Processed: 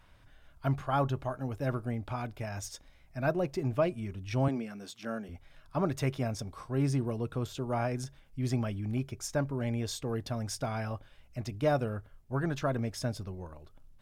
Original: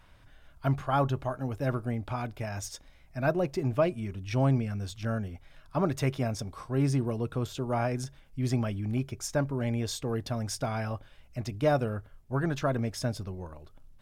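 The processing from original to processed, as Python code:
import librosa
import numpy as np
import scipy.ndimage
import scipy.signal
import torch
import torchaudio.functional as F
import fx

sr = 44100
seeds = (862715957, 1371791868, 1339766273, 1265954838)

y = fx.highpass(x, sr, hz=200.0, slope=24, at=(4.48, 5.29))
y = y * librosa.db_to_amplitude(-2.5)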